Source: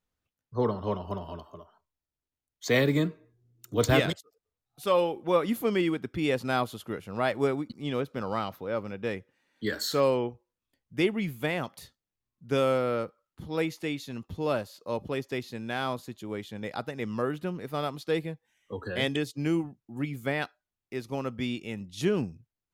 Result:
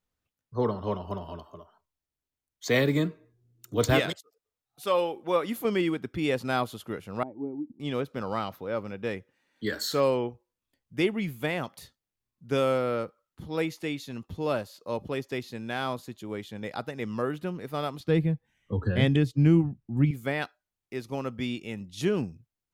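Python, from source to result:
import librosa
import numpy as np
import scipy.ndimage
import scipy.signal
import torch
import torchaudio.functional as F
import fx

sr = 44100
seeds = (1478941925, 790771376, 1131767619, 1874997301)

y = fx.low_shelf(x, sr, hz=210.0, db=-9.0, at=(3.98, 5.65))
y = fx.formant_cascade(y, sr, vowel='u', at=(7.23, 7.8))
y = fx.bass_treble(y, sr, bass_db=15, treble_db=-7, at=(18.0, 20.11))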